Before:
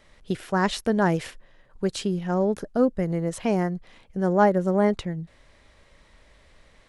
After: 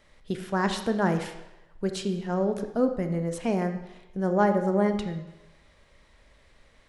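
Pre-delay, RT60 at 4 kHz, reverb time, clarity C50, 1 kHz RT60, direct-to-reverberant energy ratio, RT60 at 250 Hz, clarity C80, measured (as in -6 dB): 26 ms, 0.80 s, 1.0 s, 9.0 dB, 0.95 s, 7.0 dB, 0.90 s, 11.0 dB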